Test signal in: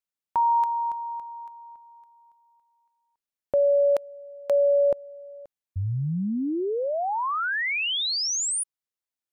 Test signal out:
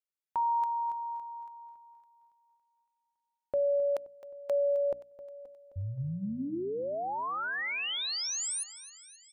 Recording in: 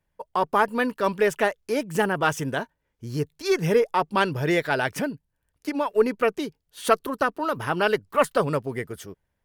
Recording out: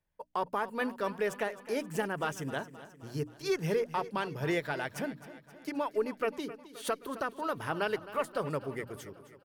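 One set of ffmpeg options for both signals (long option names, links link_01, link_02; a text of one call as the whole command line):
ffmpeg -i in.wav -filter_complex "[0:a]bandreject=frequency=60:width_type=h:width=6,bandreject=frequency=120:width_type=h:width=6,bandreject=frequency=180:width_type=h:width=6,bandreject=frequency=240:width_type=h:width=6,bandreject=frequency=300:width_type=h:width=6,alimiter=limit=-13.5dB:level=0:latency=1:release=248,asplit=2[link_01][link_02];[link_02]aecho=0:1:263|526|789|1052|1315|1578:0.168|0.0957|0.0545|0.0311|0.0177|0.0101[link_03];[link_01][link_03]amix=inputs=2:normalize=0,volume=-7.5dB" out.wav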